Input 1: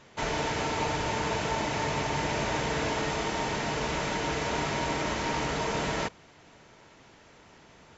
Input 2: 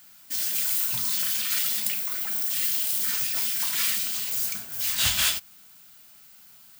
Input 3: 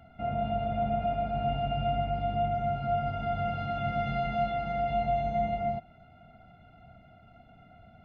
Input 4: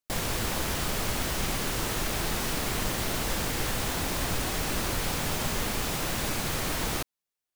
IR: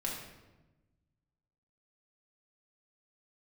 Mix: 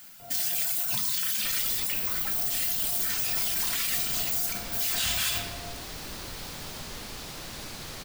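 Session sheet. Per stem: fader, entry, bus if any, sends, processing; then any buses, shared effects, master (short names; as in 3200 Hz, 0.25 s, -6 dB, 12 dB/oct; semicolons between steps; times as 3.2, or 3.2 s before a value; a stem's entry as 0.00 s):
off
0.0 dB, 0.00 s, send -3.5 dB, reverb removal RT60 0.87 s
-16.0 dB, 0.00 s, muted 0.95–2.33, no send, minimum comb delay 7.2 ms
-11.0 dB, 1.35 s, no send, bell 4500 Hz +6.5 dB 1 oct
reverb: on, RT60 1.1 s, pre-delay 4 ms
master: limiter -18 dBFS, peak gain reduction 10.5 dB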